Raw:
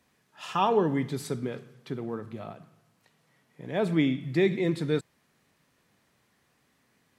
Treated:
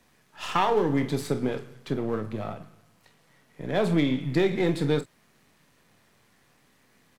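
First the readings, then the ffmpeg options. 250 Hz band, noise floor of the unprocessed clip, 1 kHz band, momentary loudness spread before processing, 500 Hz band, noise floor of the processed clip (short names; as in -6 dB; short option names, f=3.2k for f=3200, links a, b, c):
+2.0 dB, -70 dBFS, +1.5 dB, 17 LU, +2.0 dB, -64 dBFS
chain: -filter_complex "[0:a]aeval=exprs='if(lt(val(0),0),0.447*val(0),val(0))':c=same,aecho=1:1:28|47:0.282|0.178,acrossover=split=110|3600[a][b][c];[a]acompressor=threshold=-47dB:ratio=4[d];[b]acompressor=threshold=-28dB:ratio=4[e];[c]acompressor=threshold=-49dB:ratio=4[f];[d][e][f]amix=inputs=3:normalize=0,volume=8dB"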